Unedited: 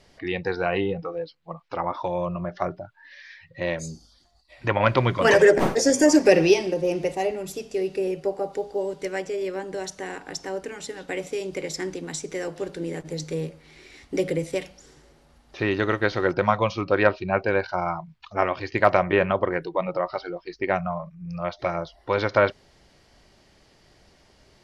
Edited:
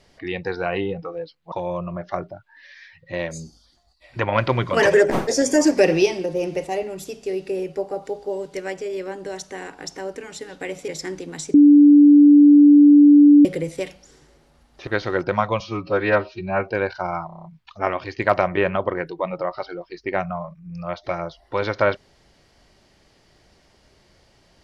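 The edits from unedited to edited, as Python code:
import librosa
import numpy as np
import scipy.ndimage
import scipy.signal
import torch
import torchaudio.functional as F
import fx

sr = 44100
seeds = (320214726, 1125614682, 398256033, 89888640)

y = fx.edit(x, sr, fx.cut(start_s=1.52, length_s=0.48),
    fx.cut(start_s=11.36, length_s=0.27),
    fx.bleep(start_s=12.29, length_s=1.91, hz=291.0, db=-6.5),
    fx.cut(start_s=15.62, length_s=0.35),
    fx.stretch_span(start_s=16.7, length_s=0.73, factor=1.5),
    fx.stutter(start_s=18.0, slice_s=0.03, count=7), tone=tone)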